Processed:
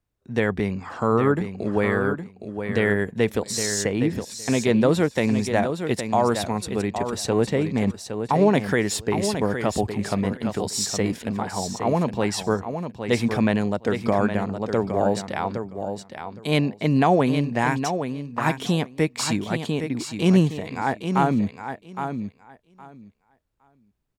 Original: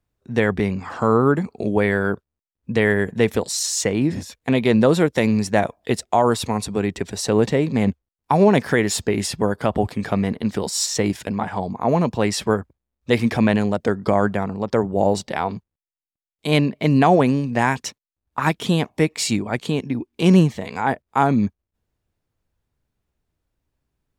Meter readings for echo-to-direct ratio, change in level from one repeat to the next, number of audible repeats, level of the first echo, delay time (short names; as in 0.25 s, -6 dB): -8.0 dB, -16.0 dB, 2, -8.0 dB, 0.814 s